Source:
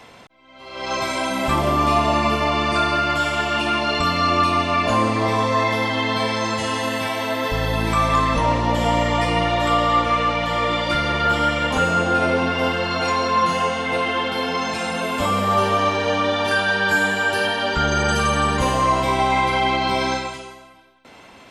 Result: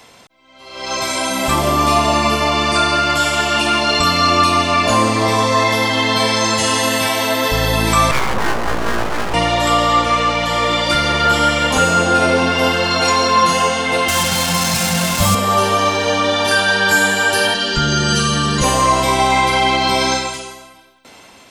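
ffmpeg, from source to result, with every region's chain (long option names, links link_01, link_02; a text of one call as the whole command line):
ffmpeg -i in.wav -filter_complex "[0:a]asettb=1/sr,asplit=3[link_01][link_02][link_03];[link_01]atrim=end=8.114[link_04];[link_02]atrim=start=8.11:end=9.34,asetpts=PTS-STARTPTS,afade=type=in:duration=0.004:curve=qsin,afade=type=out:start_time=1.226:duration=0.004:curve=qsin,lowpass=1100,bandreject=frequency=60:width_type=h:width=6,bandreject=frequency=120:width_type=h:width=6,bandreject=frequency=180:width_type=h:width=6,bandreject=frequency=240:width_type=h:width=6,bandreject=frequency=300:width_type=h:width=6,bandreject=frequency=360:width_type=h:width=6,bandreject=frequency=420:width_type=h:width=6,bandreject=frequency=480:width_type=h:width=6,aeval=exprs='abs(val(0))':channel_layout=same[link_05];[link_03]atrim=start=9.336[link_06];[link_04][link_05]acrossfade=duration=0.004:curve1=hsin:curve2=qsin[link_07];[link_07][link_06]acrossfade=duration=0.004:curve1=qsin:curve2=hsin,asettb=1/sr,asplit=3[link_08][link_09][link_10];[link_08]atrim=end=14.084[link_11];[link_09]atrim=start=14.08:end=15.35,asetpts=PTS-STARTPTS,afade=type=in:duration=0.004:curve=qsin,afade=type=out:start_time=1.266:duration=0.004:curve=qsin,lowshelf=frequency=210:width_type=q:width=3:gain=8.5,acrusher=bits=3:mix=0:aa=0.5,bandreject=frequency=440:width=9[link_12];[link_10]atrim=start=15.346[link_13];[link_11][link_12]acrossfade=duration=0.004:curve1=hsin:curve2=qsin[link_14];[link_14][link_13]acrossfade=duration=0.004:curve1=qsin:curve2=hsin,asettb=1/sr,asplit=3[link_15][link_16][link_17];[link_15]atrim=end=17.544[link_18];[link_16]atrim=start=17.54:end=18.64,asetpts=PTS-STARTPTS,afade=type=in:duration=0.004:curve=qsin,afade=type=out:start_time=1.096:duration=0.004:curve=qsin,acrossover=split=390|3000[link_19][link_20][link_21];[link_20]acompressor=threshold=-35dB:ratio=2:attack=3.2:release=140:knee=2.83:detection=peak[link_22];[link_19][link_22][link_21]amix=inputs=3:normalize=0,lowpass=7100,aecho=1:1:5.8:0.97,atrim=end_sample=48510[link_23];[link_17]atrim=start=18.636[link_24];[link_18][link_23]acrossfade=duration=0.004:curve1=hsin:curve2=qsin[link_25];[link_25][link_24]acrossfade=duration=0.004:curve1=qsin:curve2=hsin,bass=frequency=250:gain=-1,treble=frequency=4000:gain=10,dynaudnorm=framelen=290:gausssize=7:maxgain=11.5dB,volume=-1dB" out.wav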